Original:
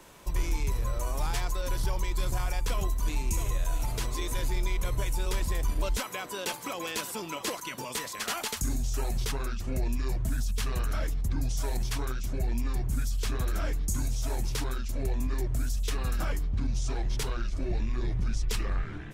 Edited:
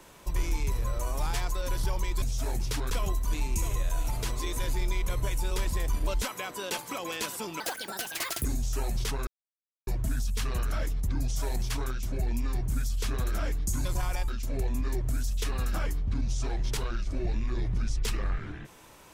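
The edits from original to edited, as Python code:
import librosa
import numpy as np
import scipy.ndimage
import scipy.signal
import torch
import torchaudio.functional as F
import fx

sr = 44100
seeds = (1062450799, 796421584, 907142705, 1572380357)

y = fx.edit(x, sr, fx.swap(start_s=2.22, length_s=0.43, other_s=14.06, other_length_s=0.68),
    fx.speed_span(start_s=7.35, length_s=1.31, speed=1.54),
    fx.silence(start_s=9.48, length_s=0.6), tone=tone)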